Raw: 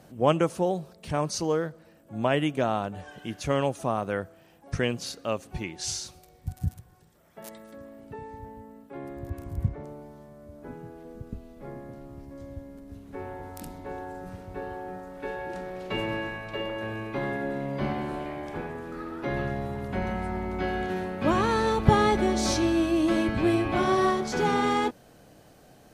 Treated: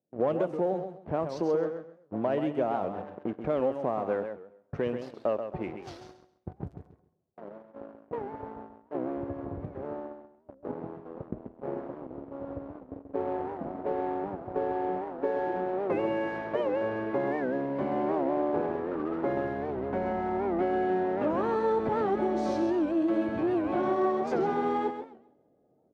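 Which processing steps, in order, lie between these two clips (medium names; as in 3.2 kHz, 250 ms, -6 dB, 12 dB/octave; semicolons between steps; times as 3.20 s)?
gate -45 dBFS, range -21 dB; level-controlled noise filter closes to 470 Hz, open at -23 dBFS; reverse; upward compressor, threshold -42 dBFS; reverse; waveshaping leveller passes 3; compression 6:1, threshold -24 dBFS, peak gain reduction 14.5 dB; band-pass filter 500 Hz, Q 0.93; feedback delay 133 ms, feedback 22%, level -8 dB; on a send at -20.5 dB: reverberation, pre-delay 32 ms; on the sum: warped record 78 rpm, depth 160 cents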